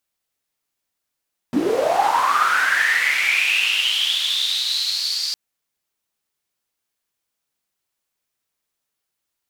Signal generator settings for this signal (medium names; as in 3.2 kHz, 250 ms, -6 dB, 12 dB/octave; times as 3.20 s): swept filtered noise white, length 3.81 s bandpass, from 220 Hz, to 4.7 kHz, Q 9.7, linear, gain ramp -15 dB